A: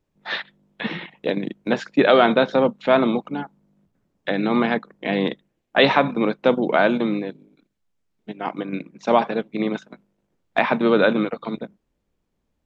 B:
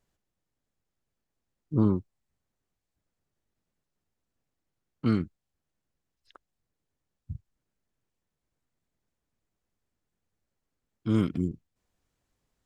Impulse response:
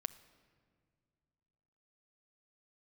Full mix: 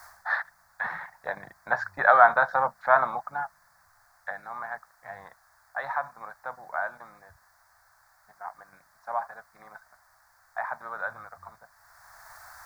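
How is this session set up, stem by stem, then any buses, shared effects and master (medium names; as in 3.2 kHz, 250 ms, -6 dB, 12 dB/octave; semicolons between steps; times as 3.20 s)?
4.10 s -3 dB -> 4.44 s -15.5 dB, 0.00 s, no send, band-stop 660 Hz, Q 18
-7.0 dB, 0.00 s, no send, peak limiter -21 dBFS, peak gain reduction 9 dB; word length cut 6-bit, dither triangular; auto duck -14 dB, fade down 0.20 s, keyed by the first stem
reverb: none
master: FFT filter 100 Hz 0 dB, 210 Hz -24 dB, 300 Hz -28 dB, 460 Hz -19 dB, 690 Hz +5 dB, 1.7 kHz +7 dB, 2.9 kHz -30 dB, 4.6 kHz -8 dB, 8.5 kHz -12 dB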